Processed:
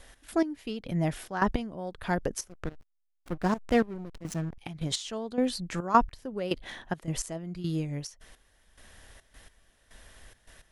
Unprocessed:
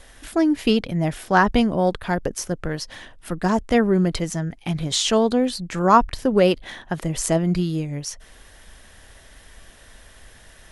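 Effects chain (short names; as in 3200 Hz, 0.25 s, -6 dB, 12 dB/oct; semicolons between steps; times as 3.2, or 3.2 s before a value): step gate "x.x...xx" 106 bpm -12 dB; 2.49–4.58 backlash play -26.5 dBFS; gain -5.5 dB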